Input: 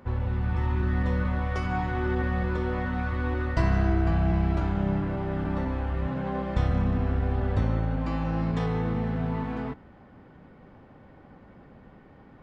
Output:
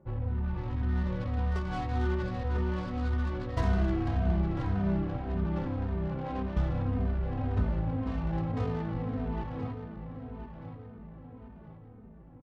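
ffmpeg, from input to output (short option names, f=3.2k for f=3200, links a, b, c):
-filter_complex "[0:a]adynamicsmooth=sensitivity=2:basefreq=540,aemphasis=mode=production:type=75fm,asplit=2[a][b];[b]adelay=1023,lowpass=f=3.7k:p=1,volume=-8.5dB,asplit=2[c][d];[d]adelay=1023,lowpass=f=3.7k:p=1,volume=0.47,asplit=2[e][f];[f]adelay=1023,lowpass=f=3.7k:p=1,volume=0.47,asplit=2[g][h];[h]adelay=1023,lowpass=f=3.7k:p=1,volume=0.47,asplit=2[i][j];[j]adelay=1023,lowpass=f=3.7k:p=1,volume=0.47[k];[a][c][e][g][i][k]amix=inputs=6:normalize=0,asplit=2[l][m];[m]adelay=3,afreqshift=-1.8[n];[l][n]amix=inputs=2:normalize=1,volume=-1dB"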